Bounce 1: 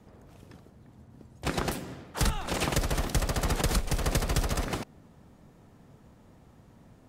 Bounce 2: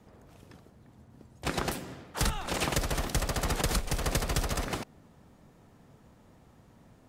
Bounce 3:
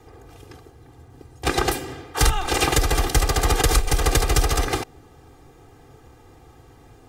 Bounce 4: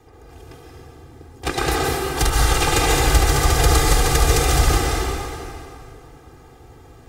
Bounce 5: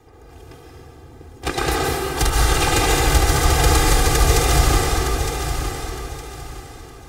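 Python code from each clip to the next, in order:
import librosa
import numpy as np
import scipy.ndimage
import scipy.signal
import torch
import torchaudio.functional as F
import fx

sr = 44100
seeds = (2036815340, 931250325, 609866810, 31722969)

y1 = fx.low_shelf(x, sr, hz=450.0, db=-3.0)
y2 = y1 + 1.0 * np.pad(y1, (int(2.5 * sr / 1000.0), 0))[:len(y1)]
y2 = F.gain(torch.from_numpy(y2), 7.0).numpy()
y3 = fx.rev_plate(y2, sr, seeds[0], rt60_s=2.6, hf_ratio=0.8, predelay_ms=110, drr_db=-4.0)
y3 = F.gain(torch.from_numpy(y3), -2.0).numpy()
y4 = fx.echo_feedback(y3, sr, ms=912, feedback_pct=29, wet_db=-8.0)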